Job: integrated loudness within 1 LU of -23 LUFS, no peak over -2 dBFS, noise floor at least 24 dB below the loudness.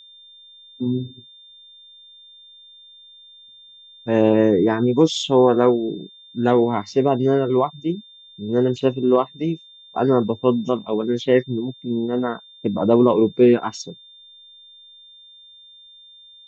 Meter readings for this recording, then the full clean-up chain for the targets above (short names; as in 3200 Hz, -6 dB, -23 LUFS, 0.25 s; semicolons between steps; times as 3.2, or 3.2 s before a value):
steady tone 3600 Hz; tone level -44 dBFS; loudness -19.5 LUFS; peak -2.5 dBFS; loudness target -23.0 LUFS
-> notch 3600 Hz, Q 30; gain -3.5 dB